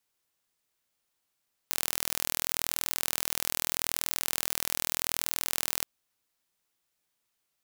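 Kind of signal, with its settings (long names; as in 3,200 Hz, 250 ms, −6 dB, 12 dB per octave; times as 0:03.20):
impulse train 40.8 per second, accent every 0, −2 dBFS 4.12 s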